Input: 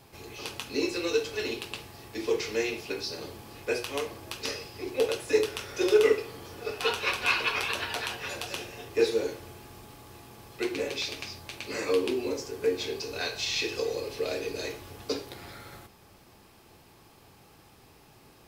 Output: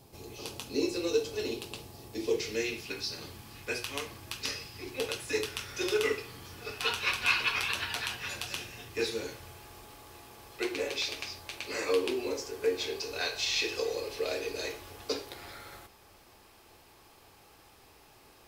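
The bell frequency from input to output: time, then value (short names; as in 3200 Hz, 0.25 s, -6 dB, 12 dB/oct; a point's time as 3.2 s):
bell -9.5 dB 1.7 oct
2.11 s 1800 Hz
2.96 s 500 Hz
9.22 s 500 Hz
9.78 s 160 Hz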